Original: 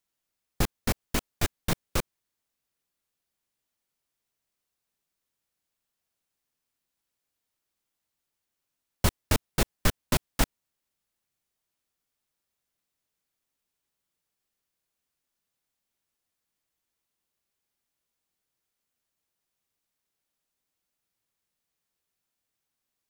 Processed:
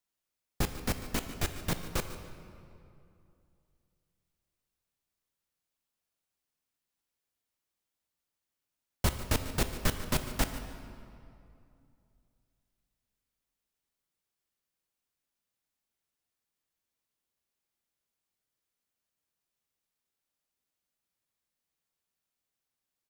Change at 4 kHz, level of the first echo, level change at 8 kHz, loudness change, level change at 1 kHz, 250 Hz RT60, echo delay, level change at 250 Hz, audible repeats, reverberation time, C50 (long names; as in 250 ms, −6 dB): −4.0 dB, −15.5 dB, −4.0 dB, −4.0 dB, −3.5 dB, 2.9 s, 146 ms, −3.5 dB, 1, 2.6 s, 8.0 dB